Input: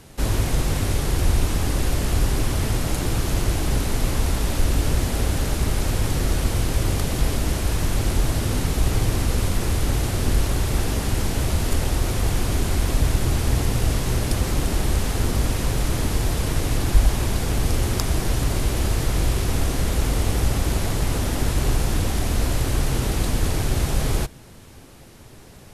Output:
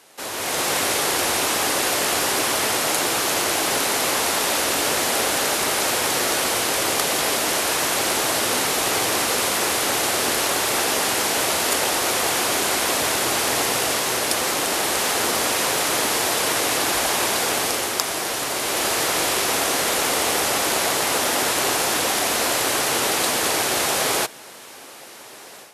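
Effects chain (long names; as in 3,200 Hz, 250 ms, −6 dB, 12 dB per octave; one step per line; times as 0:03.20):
high-pass filter 560 Hz 12 dB per octave
automatic gain control gain up to 10.5 dB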